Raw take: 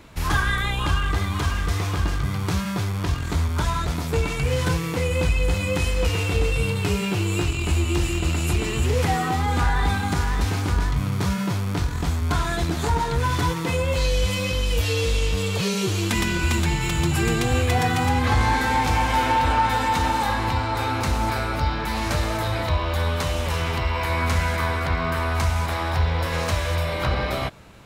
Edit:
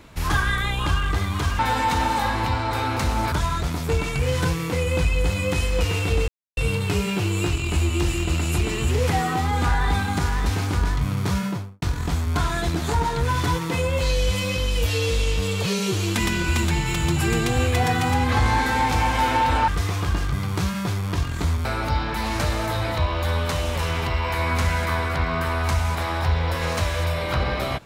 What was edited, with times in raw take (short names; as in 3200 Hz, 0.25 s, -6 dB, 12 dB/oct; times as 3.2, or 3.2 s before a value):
1.59–3.56 swap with 19.63–21.36
6.52 insert silence 0.29 s
11.35–11.77 studio fade out